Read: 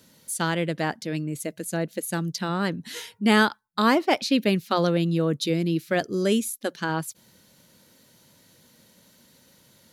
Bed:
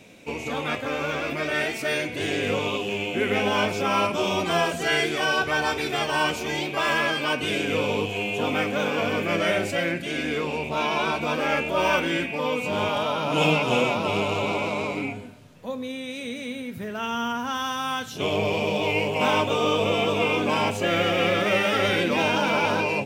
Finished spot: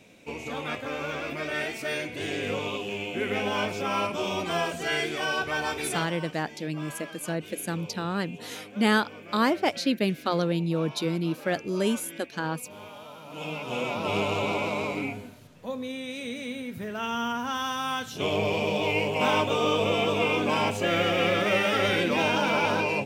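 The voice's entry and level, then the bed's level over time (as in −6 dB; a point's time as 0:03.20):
5.55 s, −3.5 dB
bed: 0:05.96 −5 dB
0:06.17 −19 dB
0:13.24 −19 dB
0:14.15 −2 dB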